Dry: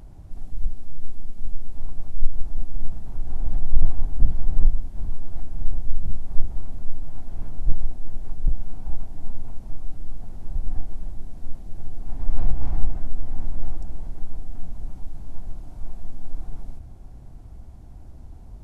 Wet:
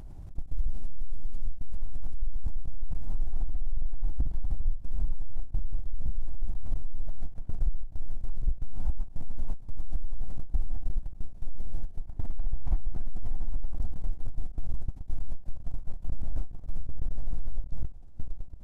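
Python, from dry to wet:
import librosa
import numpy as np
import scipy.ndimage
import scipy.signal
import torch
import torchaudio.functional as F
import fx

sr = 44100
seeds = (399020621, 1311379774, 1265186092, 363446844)

y = fx.low_shelf(x, sr, hz=75.0, db=5.0)
y = 10.0 ** (-5.5 / 20.0) * np.tanh(y / 10.0 ** (-5.5 / 20.0))
y = fx.echo_pitch(y, sr, ms=289, semitones=-4, count=3, db_per_echo=-6.0)
y = fx.level_steps(y, sr, step_db=22)
y = fx.end_taper(y, sr, db_per_s=230.0)
y = y * 10.0 ** (3.0 / 20.0)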